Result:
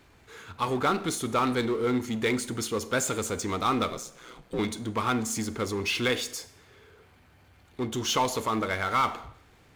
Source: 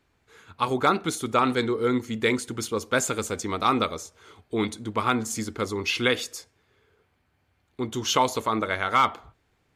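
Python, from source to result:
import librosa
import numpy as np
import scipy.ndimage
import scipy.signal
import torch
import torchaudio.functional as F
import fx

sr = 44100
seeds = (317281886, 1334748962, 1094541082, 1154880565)

y = fx.ring_mod(x, sr, carrier_hz=61.0, at=(3.9, 4.59))
y = fx.power_curve(y, sr, exponent=0.7)
y = fx.rev_schroeder(y, sr, rt60_s=0.72, comb_ms=32, drr_db=16.0)
y = y * librosa.db_to_amplitude(-6.5)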